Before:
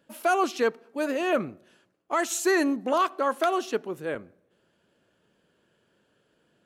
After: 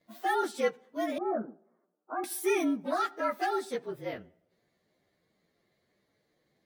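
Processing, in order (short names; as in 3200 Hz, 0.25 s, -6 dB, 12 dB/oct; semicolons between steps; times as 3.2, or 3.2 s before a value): inharmonic rescaling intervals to 112%; 1.18–2.24 elliptic band-pass 200–1300 Hz, stop band 40 dB; gain -2.5 dB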